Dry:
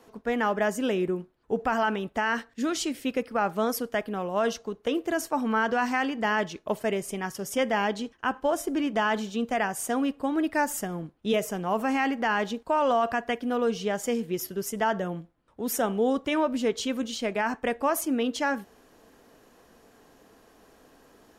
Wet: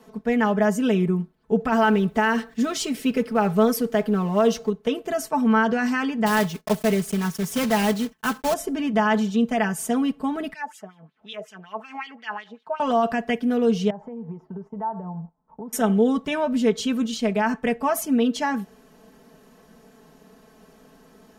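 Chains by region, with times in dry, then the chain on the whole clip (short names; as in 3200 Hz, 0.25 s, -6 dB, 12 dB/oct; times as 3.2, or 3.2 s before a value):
1.72–4.7 G.711 law mismatch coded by mu + bell 420 Hz +4.5 dB 0.28 oct
6.26–8.55 block floating point 3-bit + gate -52 dBFS, range -10 dB
10.53–12.8 bell 620 Hz -3 dB 1.6 oct + upward compressor, threshold -31 dBFS + wah 5.4 Hz 630–3800 Hz, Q 3.1
13.9–15.73 compressor 8:1, threshold -40 dBFS + synth low-pass 920 Hz, resonance Q 5.9 + gate -58 dBFS, range -9 dB
whole clip: bell 160 Hz +11 dB 0.83 oct; comb 4.6 ms, depth 79%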